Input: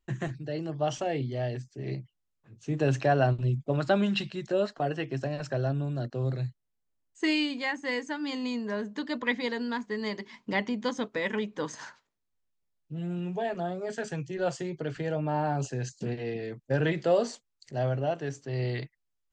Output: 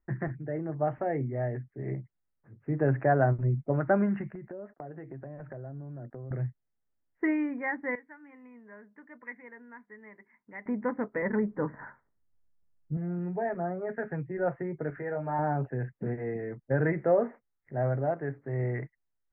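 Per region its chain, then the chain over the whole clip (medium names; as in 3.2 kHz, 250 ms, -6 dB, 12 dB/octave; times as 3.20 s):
4.35–6.31 s: gate -49 dBFS, range -23 dB + dynamic bell 1.7 kHz, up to -6 dB, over -47 dBFS, Q 0.98 + compression 5:1, threshold -39 dBFS
7.95–10.66 s: pre-emphasis filter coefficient 0.9 + tape noise reduction on one side only decoder only
11.22–12.97 s: low-pass 1.9 kHz 24 dB/octave + bass shelf 180 Hz +11.5 dB
14.90–15.39 s: bass shelf 350 Hz -9.5 dB + doubling 21 ms -5 dB
whole clip: steep low-pass 2.1 kHz 72 dB/octave; band-stop 1.1 kHz, Q 17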